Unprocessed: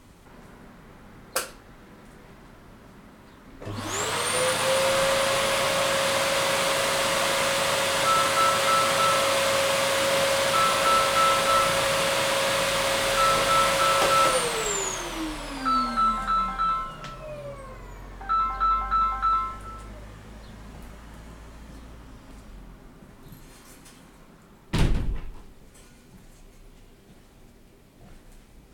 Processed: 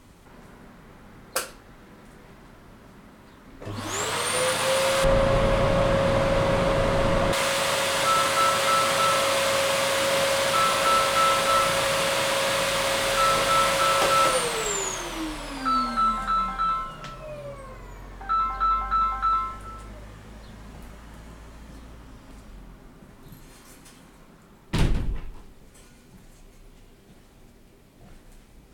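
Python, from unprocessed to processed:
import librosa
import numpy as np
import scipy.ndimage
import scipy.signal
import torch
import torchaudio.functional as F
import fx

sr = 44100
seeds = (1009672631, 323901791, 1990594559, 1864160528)

y = fx.tilt_eq(x, sr, slope=-4.5, at=(5.04, 7.33))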